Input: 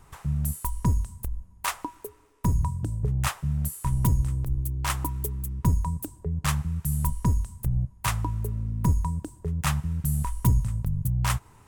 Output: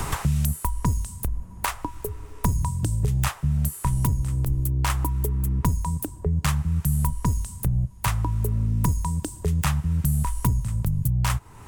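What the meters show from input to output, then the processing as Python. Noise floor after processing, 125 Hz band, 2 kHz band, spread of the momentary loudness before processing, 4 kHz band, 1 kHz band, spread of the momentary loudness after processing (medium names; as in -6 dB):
-43 dBFS, +2.5 dB, +1.5 dB, 7 LU, +1.5 dB, +2.5 dB, 5 LU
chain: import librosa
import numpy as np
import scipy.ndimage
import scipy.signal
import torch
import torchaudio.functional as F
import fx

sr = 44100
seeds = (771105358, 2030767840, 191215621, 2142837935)

y = fx.band_squash(x, sr, depth_pct=100)
y = y * 10.0 ** (2.0 / 20.0)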